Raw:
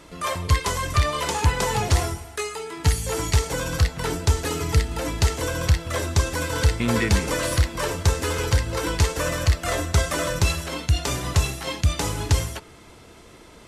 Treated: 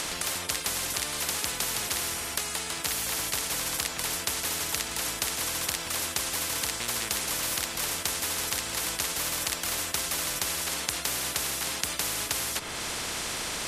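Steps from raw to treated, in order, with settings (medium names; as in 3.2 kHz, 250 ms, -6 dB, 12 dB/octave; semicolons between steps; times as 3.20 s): upward compressor, threshold -24 dBFS; spectrum-flattening compressor 10:1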